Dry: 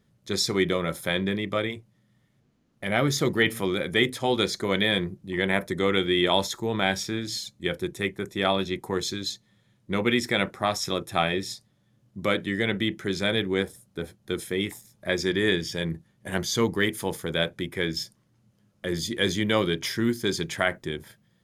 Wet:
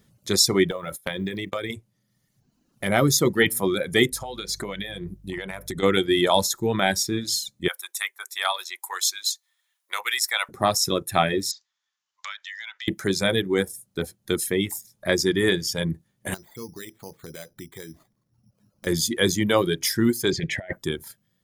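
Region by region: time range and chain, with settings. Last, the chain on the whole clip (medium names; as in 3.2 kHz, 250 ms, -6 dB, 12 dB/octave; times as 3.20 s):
0.71–1.70 s: gate -37 dBFS, range -20 dB + compression 8:1, threshold -27 dBFS + short-mantissa float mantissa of 6-bit
4.10–5.82 s: compression 12:1, threshold -31 dBFS + mains buzz 50 Hz, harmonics 3, -48 dBFS
7.68–10.49 s: high-pass 880 Hz 24 dB/octave + treble shelf 9.2 kHz +5.5 dB
11.51–12.88 s: steep high-pass 930 Hz + careless resampling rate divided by 3×, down none, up filtered + compression 3:1, threshold -41 dBFS
16.34–18.87 s: compression 2.5:1, threshold -45 dBFS + tape spacing loss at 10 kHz 28 dB + careless resampling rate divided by 8×, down none, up hold
20.31–20.73 s: FFT filter 640 Hz 0 dB, 1.2 kHz -18 dB, 1.9 kHz +7 dB, 9.9 kHz -20 dB + compressor with a negative ratio -29 dBFS, ratio -0.5
whole clip: dynamic bell 2.8 kHz, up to -6 dB, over -39 dBFS, Q 0.92; reverb removal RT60 1.2 s; treble shelf 5.7 kHz +10 dB; trim +5 dB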